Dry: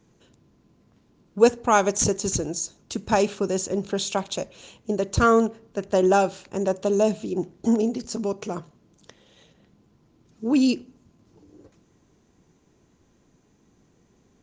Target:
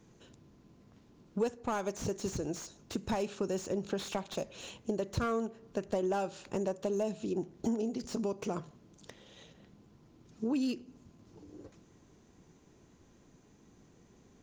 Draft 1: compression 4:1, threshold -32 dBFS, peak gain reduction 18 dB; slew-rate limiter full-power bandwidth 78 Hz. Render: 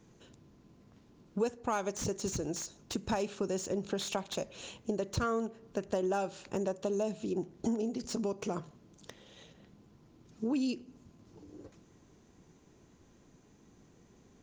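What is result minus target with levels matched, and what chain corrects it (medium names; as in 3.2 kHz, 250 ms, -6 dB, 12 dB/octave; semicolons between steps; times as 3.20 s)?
slew-rate limiter: distortion -4 dB
compression 4:1, threshold -32 dBFS, peak gain reduction 18 dB; slew-rate limiter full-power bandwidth 37.5 Hz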